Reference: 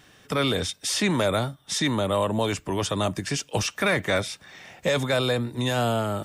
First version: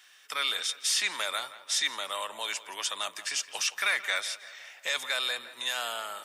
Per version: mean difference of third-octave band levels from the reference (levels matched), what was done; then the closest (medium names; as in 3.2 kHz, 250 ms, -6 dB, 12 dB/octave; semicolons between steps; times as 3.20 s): 11.5 dB: high-pass 1.5 kHz 12 dB/octave; on a send: tape echo 168 ms, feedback 60%, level -14 dB, low-pass 2.9 kHz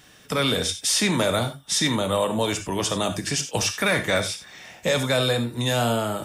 3.5 dB: treble shelf 4 kHz +6.5 dB; gated-style reverb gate 110 ms flat, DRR 7 dB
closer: second